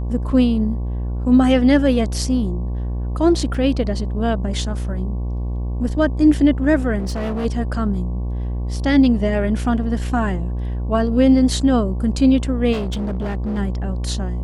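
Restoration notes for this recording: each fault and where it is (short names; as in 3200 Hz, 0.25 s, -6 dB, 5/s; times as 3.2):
buzz 60 Hz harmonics 19 -23 dBFS
3.54 gap 4.5 ms
6.98–7.46 clipped -20 dBFS
12.72–13.59 clipped -20 dBFS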